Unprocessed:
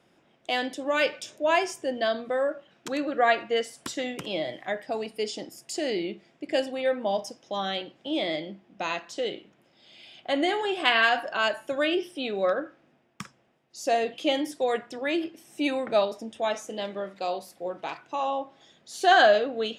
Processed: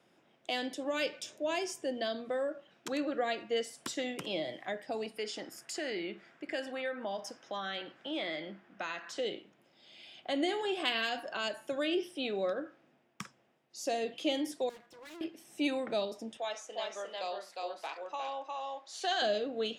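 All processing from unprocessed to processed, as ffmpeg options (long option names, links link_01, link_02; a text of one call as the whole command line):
ffmpeg -i in.wav -filter_complex "[0:a]asettb=1/sr,asplit=3[link_01][link_02][link_03];[link_01]atrim=end=5.174[link_04];[link_02]atrim=start=5.17:end=9.19,asetpts=PTS-STARTPTS,afade=type=in:duration=0.004:curve=qsin,afade=type=out:start_time=4.016:duration=0.004:curve=qsin,equalizer=frequency=1500:width=1.3:gain=13.5,acompressor=threshold=-38dB:ratio=1.5:attack=3.2:release=140:knee=1:detection=peak[link_05];[link_03]atrim=start=9.186[link_06];[link_04][link_05]acrossfade=duration=0.004:curve1=hsin:curve2=qsin[link_07];[link_07][link_06]acrossfade=duration=0.004:curve1=qsin:curve2=hsin,asettb=1/sr,asplit=3[link_08][link_09][link_10];[link_08]atrim=end=14.694[link_11];[link_09]atrim=start=14.69:end=15.21,asetpts=PTS-STARTPTS,afade=type=in:duration=0.004:curve=qsin,afade=type=out:start_time=0.516:duration=0.004:curve=qsin,aeval=exprs='if(lt(val(0),0),0.251*val(0),val(0))':channel_layout=same,aecho=1:1:6:0.75,atrim=end_sample=22932,aeval=exprs='(tanh(141*val(0)+0.75)-tanh(0.75))/141':channel_layout=same[link_12];[link_10]atrim=start=15.206[link_13];[link_11][link_12]acrossfade=duration=0.004:curve1=hsin:curve2=qsin[link_14];[link_14][link_13]acrossfade=duration=0.004:curve1=qsin:curve2=hsin,asettb=1/sr,asplit=3[link_15][link_16][link_17];[link_15]atrim=end=16.374[link_18];[link_16]atrim=start=16.37:end=19.22,asetpts=PTS-STARTPTS,afade=type=in:duration=0.004:curve=qsin,afade=type=out:start_time=2.846:duration=0.004:curve=qsin,highpass=610,lowpass=7300,aecho=1:1:356:0.708,atrim=end_sample=125685[link_19];[link_17]atrim=start=19.216[link_20];[link_18][link_19]acrossfade=duration=0.004:curve1=hsin:curve2=qsin[link_21];[link_21][link_20]acrossfade=duration=0.004:curve1=qsin:curve2=hsin,highpass=frequency=140:poles=1,acrossover=split=470|3000[link_22][link_23][link_24];[link_23]acompressor=threshold=-34dB:ratio=6[link_25];[link_22][link_25][link_24]amix=inputs=3:normalize=0,volume=-3.5dB" out.wav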